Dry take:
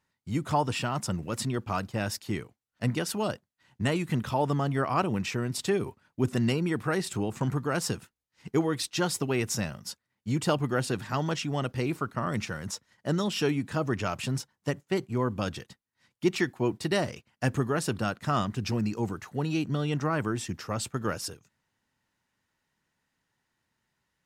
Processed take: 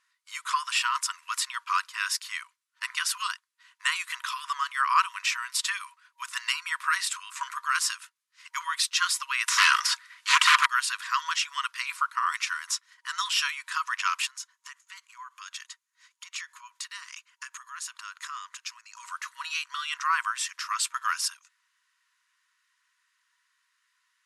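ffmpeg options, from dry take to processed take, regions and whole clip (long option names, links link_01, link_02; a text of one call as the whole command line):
ffmpeg -i in.wav -filter_complex "[0:a]asettb=1/sr,asplit=3[link_01][link_02][link_03];[link_01]atrim=end=9.484[link_04];[link_02]atrim=start=9.48:end=10.66,asetpts=PTS-STARTPTS,afade=type=in:duration=0.004:curve=qsin,afade=type=out:start_time=1.176:duration=0.004:curve=qsin,bandreject=frequency=1100:width=15,aeval=exprs='0.211*sin(PI/2*5.62*val(0)/0.211)':channel_layout=same,asplit=2[link_05][link_06];[link_06]highpass=frequency=720:poles=1,volume=12dB,asoftclip=type=tanh:threshold=-13.5dB[link_07];[link_05][link_07]amix=inputs=2:normalize=0,lowpass=frequency=3900:poles=1,volume=-6dB[link_08];[link_03]atrim=start=10.656[link_09];[link_04][link_08]acrossfade=duration=0.004:curve1=hsin:curve2=qsin[link_10];[link_10][link_09]acrossfade=duration=0.004:curve1=qsin:curve2=hsin,asettb=1/sr,asplit=3[link_11][link_12][link_13];[link_11]atrim=end=14.264[link_14];[link_12]atrim=start=14.26:end=19,asetpts=PTS-STARTPTS,afade=type=in:duration=0.004:curve=qsin,afade=type=out:start_time=4.736:duration=0.004:curve=qsin,equalizer=frequency=6700:width=7.7:gain=10,acompressor=threshold=-39dB:ratio=6:attack=3.2:release=140:knee=1:detection=peak[link_15];[link_13]atrim=start=18.996[link_16];[link_14][link_15]acrossfade=duration=0.004:curve1=hsin:curve2=qsin[link_17];[link_17][link_16]acrossfade=duration=0.004:curve1=qsin:curve2=hsin,deesser=0.55,afftfilt=real='re*between(b*sr/4096,950,12000)':imag='im*between(b*sr/4096,950,12000)':win_size=4096:overlap=0.75,volume=8dB" out.wav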